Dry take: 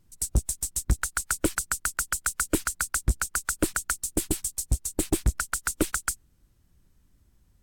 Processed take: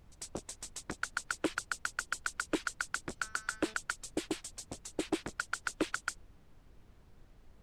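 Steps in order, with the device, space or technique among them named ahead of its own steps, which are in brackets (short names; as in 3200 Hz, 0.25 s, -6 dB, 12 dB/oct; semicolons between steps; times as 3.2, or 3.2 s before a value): 3.12–3.74 de-hum 217.7 Hz, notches 28; aircraft cabin announcement (BPF 390–3600 Hz; soft clip -21.5 dBFS, distortion -11 dB; brown noise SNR 16 dB)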